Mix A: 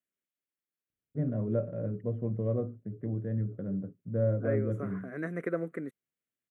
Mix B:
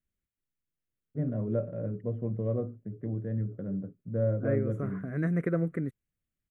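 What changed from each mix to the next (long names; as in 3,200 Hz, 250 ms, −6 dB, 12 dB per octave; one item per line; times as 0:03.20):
second voice: remove high-pass filter 320 Hz 12 dB per octave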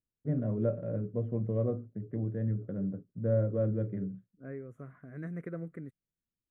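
first voice: entry −0.90 s
second voice −11.0 dB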